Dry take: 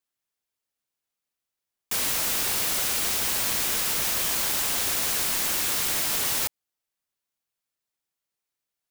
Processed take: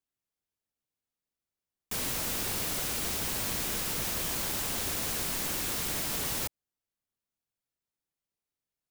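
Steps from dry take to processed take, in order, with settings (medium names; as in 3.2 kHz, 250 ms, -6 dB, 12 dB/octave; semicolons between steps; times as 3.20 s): bass shelf 470 Hz +10.5 dB; trim -7.5 dB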